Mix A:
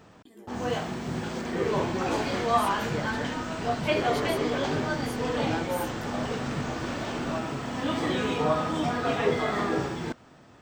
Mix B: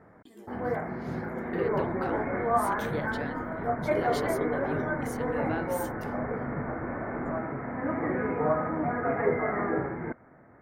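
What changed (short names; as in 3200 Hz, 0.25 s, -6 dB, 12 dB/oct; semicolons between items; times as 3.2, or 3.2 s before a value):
first sound: add rippled Chebyshev low-pass 2200 Hz, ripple 3 dB; second sound: add brick-wall FIR low-pass 1600 Hz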